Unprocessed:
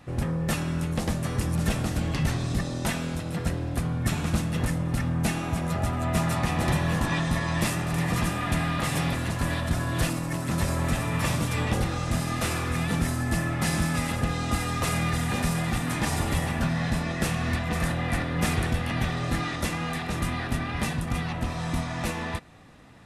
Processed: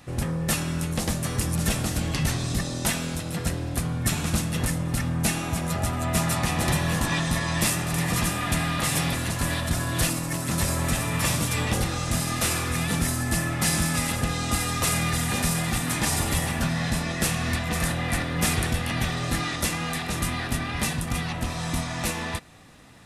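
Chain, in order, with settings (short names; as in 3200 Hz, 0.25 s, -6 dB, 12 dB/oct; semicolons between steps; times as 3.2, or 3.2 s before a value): high shelf 3600 Hz +10 dB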